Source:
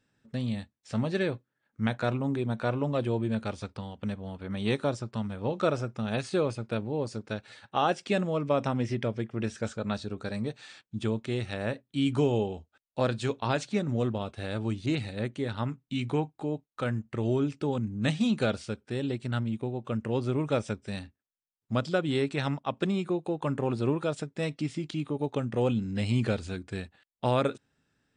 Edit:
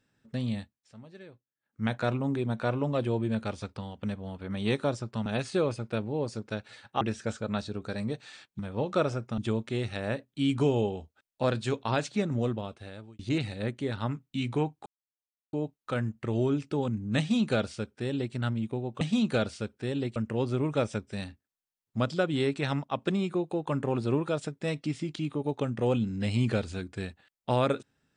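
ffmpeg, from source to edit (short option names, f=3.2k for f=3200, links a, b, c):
-filter_complex "[0:a]asplit=11[a][b][c][d][e][f][g][h][i][j][k];[a]atrim=end=0.93,asetpts=PTS-STARTPTS,afade=t=out:st=0.57:d=0.36:silence=0.1[l];[b]atrim=start=0.93:end=1.56,asetpts=PTS-STARTPTS,volume=-20dB[m];[c]atrim=start=1.56:end=5.262,asetpts=PTS-STARTPTS,afade=t=in:d=0.36:silence=0.1[n];[d]atrim=start=6.048:end=7.802[o];[e]atrim=start=9.368:end=10.952[p];[f]atrim=start=5.258:end=6.052[q];[g]atrim=start=10.948:end=14.76,asetpts=PTS-STARTPTS,afade=t=out:st=3.002:d=0.81[r];[h]atrim=start=14.76:end=16.43,asetpts=PTS-STARTPTS,afade=t=in:d=0.004:c=hsin,afade=t=out:st=1.666:d=0.004:c=hsin,apad=pad_dur=0.67[s];[i]atrim=start=16.43:end=19.912,asetpts=PTS-STARTPTS,afade=t=in:d=0.004:c=hsin[t];[j]atrim=start=18.088:end=19.242[u];[k]atrim=start=19.908[v];[l][m][n]concat=n=3:v=0:a=1[w];[w][o]acrossfade=d=0.004:c1=hsin:c2=hsin[x];[x][p]acrossfade=d=0.004:c1=hsin:c2=hsin[y];[y][q]acrossfade=d=0.004:c1=hsin:c2=hsin[z];[r][s][t]concat=n=3:v=0:a=1[aa];[z][aa]acrossfade=d=0.004:c1=hsin:c2=hsin[ab];[ab][u]acrossfade=d=0.004:c1=hsin:c2=hsin[ac];[ac][v]acrossfade=d=0.004:c1=hsin:c2=hsin"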